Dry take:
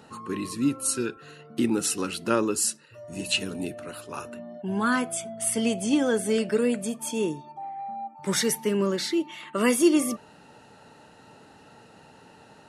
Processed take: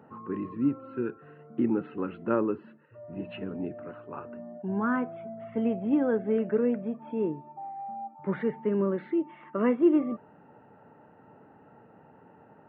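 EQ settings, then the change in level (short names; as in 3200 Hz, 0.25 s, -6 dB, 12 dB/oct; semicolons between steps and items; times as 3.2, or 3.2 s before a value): Gaussian blur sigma 5.1 samples; HPF 92 Hz; -1.5 dB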